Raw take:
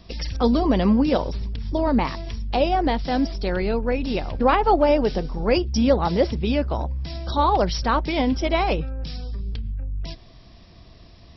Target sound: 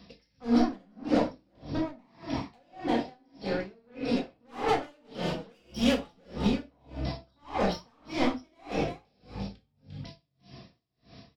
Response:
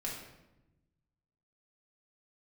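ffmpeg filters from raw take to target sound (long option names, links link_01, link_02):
-filter_complex "[0:a]highpass=110,asettb=1/sr,asplit=3[link_01][link_02][link_03];[link_01]atrim=end=2.874[link_04];[link_02]atrim=start=2.87:end=3.59,asetpts=PTS-STARTPTS,afade=type=in:duration=0.004:curve=qsin,afade=type=out:start_time=0.716:duration=0.004:curve=qsin,acompressor=threshold=-24dB:ratio=6[link_05];[link_03]atrim=start=3.586[link_06];[link_04][link_05]acrossfade=duration=0.004:curve1=hsin:curve2=qsin[link_07];[link_07][link_06]acrossfade=duration=0.004:curve1=qsin:curve2=hsin,asettb=1/sr,asplit=3[link_08][link_09][link_10];[link_08]atrim=end=4.684[link_11];[link_09]atrim=start=4.68:end=6.11,asetpts=PTS-STARTPTS,afade=type=in:duration=0.004:curve=qsin,afade=type=out:start_time=1.426:duration=0.004:curve=qsin,equalizer=frequency=3100:width=2:gain=14[link_12];[link_10]atrim=start=6.106[link_13];[link_11][link_12]acrossfade=duration=0.004:curve1=hsin:curve2=qsin[link_14];[link_14][link_13]acrossfade=duration=0.004:curve1=qsin:curve2=hsin,asoftclip=type=tanh:threshold=-22dB,asplit=5[link_15][link_16][link_17][link_18][link_19];[link_16]adelay=349,afreqshift=37,volume=-9dB[link_20];[link_17]adelay=698,afreqshift=74,volume=-19.2dB[link_21];[link_18]adelay=1047,afreqshift=111,volume=-29.3dB[link_22];[link_19]adelay=1396,afreqshift=148,volume=-39.5dB[link_23];[link_15][link_20][link_21][link_22][link_23]amix=inputs=5:normalize=0[link_24];[1:a]atrim=start_sample=2205,afade=type=out:start_time=0.22:duration=0.01,atrim=end_sample=10143,asetrate=43218,aresample=44100[link_25];[link_24][link_25]afir=irnorm=-1:irlink=0,aeval=exprs='val(0)*pow(10,-39*(0.5-0.5*cos(2*PI*1.7*n/s))/20)':channel_layout=same"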